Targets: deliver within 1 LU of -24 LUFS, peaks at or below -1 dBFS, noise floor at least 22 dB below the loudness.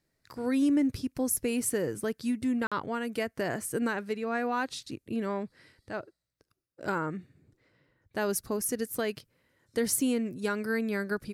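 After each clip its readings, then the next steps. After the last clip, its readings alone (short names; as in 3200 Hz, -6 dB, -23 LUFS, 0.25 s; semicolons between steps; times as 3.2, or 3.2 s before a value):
dropouts 1; longest dropout 46 ms; loudness -31.0 LUFS; peak -15.0 dBFS; loudness target -24.0 LUFS
-> interpolate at 2.67, 46 ms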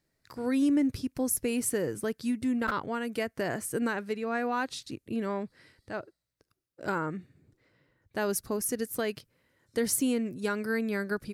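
dropouts 0; loudness -31.0 LUFS; peak -15.0 dBFS; loudness target -24.0 LUFS
-> gain +7 dB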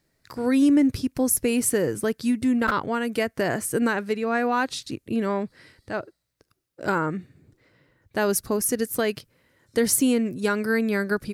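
loudness -24.0 LUFS; peak -8.0 dBFS; noise floor -75 dBFS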